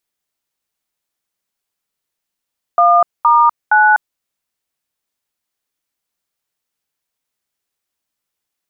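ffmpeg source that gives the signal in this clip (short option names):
-f lavfi -i "aevalsrc='0.335*clip(min(mod(t,0.467),0.248-mod(t,0.467))/0.002,0,1)*(eq(floor(t/0.467),0)*(sin(2*PI*697*mod(t,0.467))+sin(2*PI*1209*mod(t,0.467)))+eq(floor(t/0.467),1)*(sin(2*PI*941*mod(t,0.467))+sin(2*PI*1209*mod(t,0.467)))+eq(floor(t/0.467),2)*(sin(2*PI*852*mod(t,0.467))+sin(2*PI*1477*mod(t,0.467))))':d=1.401:s=44100"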